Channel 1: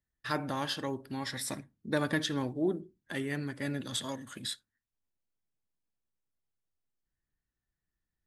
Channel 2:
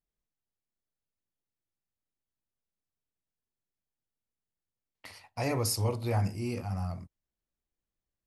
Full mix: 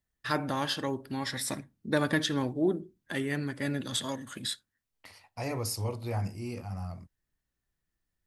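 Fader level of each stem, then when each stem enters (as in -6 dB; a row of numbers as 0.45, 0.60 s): +3.0, -3.5 dB; 0.00, 0.00 s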